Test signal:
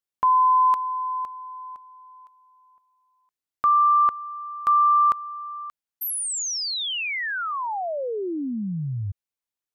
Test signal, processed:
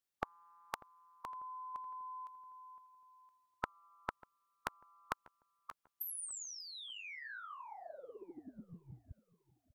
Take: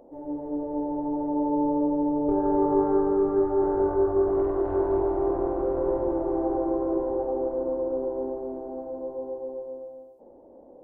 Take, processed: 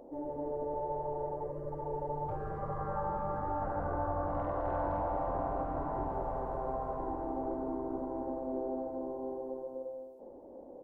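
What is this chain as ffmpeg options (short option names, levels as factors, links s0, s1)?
-filter_complex "[0:a]afftfilt=real='re*lt(hypot(re,im),0.178)':imag='im*lt(hypot(re,im),0.178)':win_size=1024:overlap=0.75,asplit=2[s0][s1];[s1]adelay=593,lowpass=f=1500:p=1,volume=0.0944,asplit=2[s2][s3];[s3]adelay=593,lowpass=f=1500:p=1,volume=0.41,asplit=2[s4][s5];[s5]adelay=593,lowpass=f=1500:p=1,volume=0.41[s6];[s0][s2][s4][s6]amix=inputs=4:normalize=0"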